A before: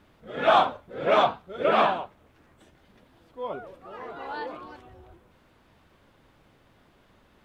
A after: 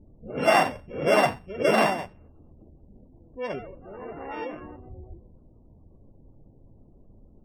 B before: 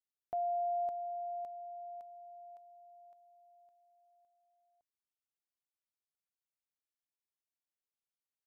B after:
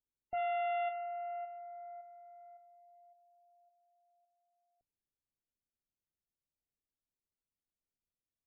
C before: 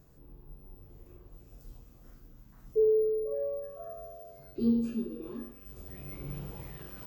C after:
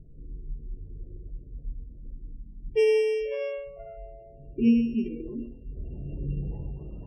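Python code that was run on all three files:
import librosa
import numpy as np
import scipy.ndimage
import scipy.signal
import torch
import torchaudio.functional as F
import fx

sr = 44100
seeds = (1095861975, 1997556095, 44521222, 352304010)

y = np.r_[np.sort(x[:len(x) // 16 * 16].reshape(-1, 16), axis=1).ravel(), x[len(x) // 16 * 16:]]
y = fx.env_lowpass(y, sr, base_hz=580.0, full_db=-25.0)
y = fx.spec_gate(y, sr, threshold_db=-25, keep='strong')
y = fx.tilt_eq(y, sr, slope=-3.0)
y = fx.hum_notches(y, sr, base_hz=60, count=3)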